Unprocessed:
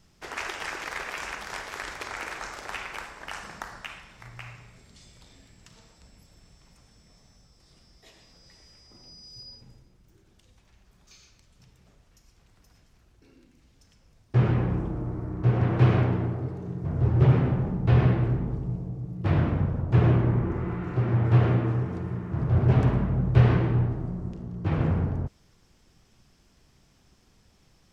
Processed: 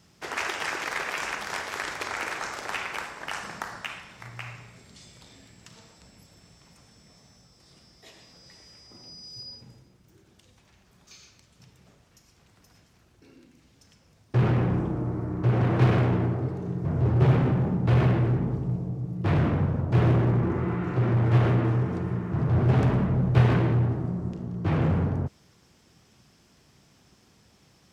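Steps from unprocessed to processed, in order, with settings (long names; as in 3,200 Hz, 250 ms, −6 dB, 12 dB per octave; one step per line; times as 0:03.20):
high-pass filter 92 Hz 12 dB per octave
in parallel at −5 dB: wave folding −24 dBFS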